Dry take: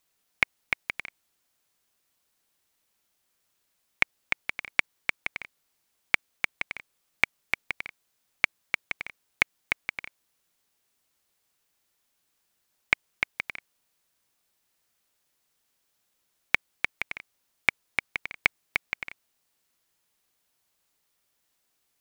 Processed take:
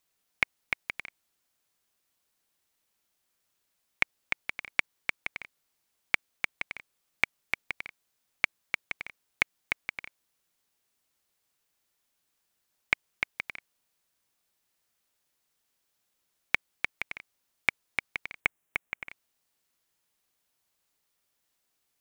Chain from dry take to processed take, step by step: 18.40–19.09 s: peaking EQ 4.6 kHz -14.5 dB 0.6 oct; trim -3 dB

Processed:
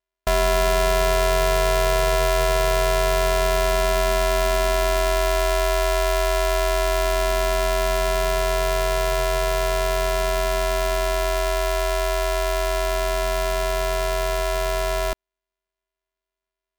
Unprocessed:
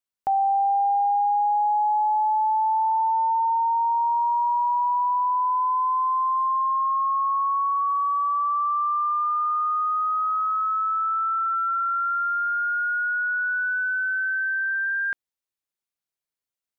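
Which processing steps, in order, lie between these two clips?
sorted samples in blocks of 128 samples; ring modulator 300 Hz; trim +5.5 dB

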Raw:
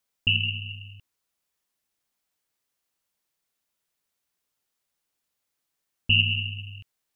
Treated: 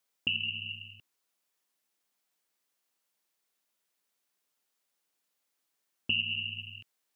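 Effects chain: high-pass 200 Hz 12 dB/octave; compression 2.5:1, threshold -31 dBFS, peak gain reduction 10.5 dB

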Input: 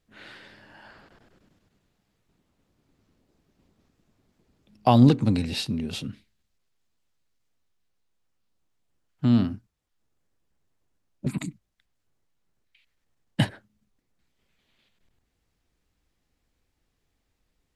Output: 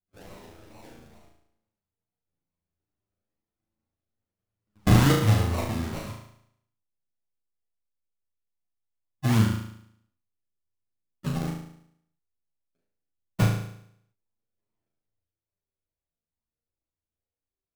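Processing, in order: gate with hold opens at -46 dBFS; graphic EQ with 31 bands 100 Hz +6 dB, 250 Hz -6 dB, 1 kHz +8 dB, 3.15 kHz +6 dB; decimation with a swept rate 37×, swing 60% 2.3 Hz; chorus voices 2, 0.21 Hz, delay 11 ms, depth 2.2 ms; on a send: flutter echo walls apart 6.2 m, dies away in 0.69 s

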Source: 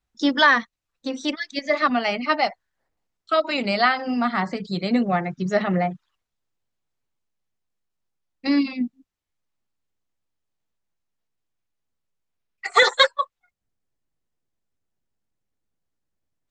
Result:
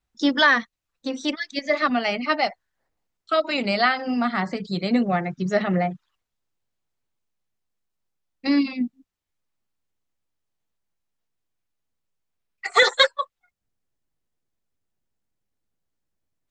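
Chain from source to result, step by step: dynamic bell 1 kHz, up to -4 dB, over -31 dBFS, Q 2.4

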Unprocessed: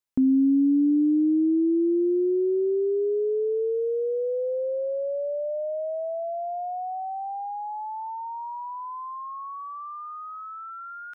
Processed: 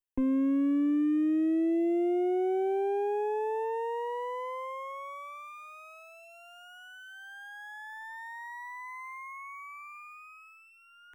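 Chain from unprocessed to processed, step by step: comb filter that takes the minimum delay 0.65 ms; static phaser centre 900 Hz, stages 8; trim -2.5 dB

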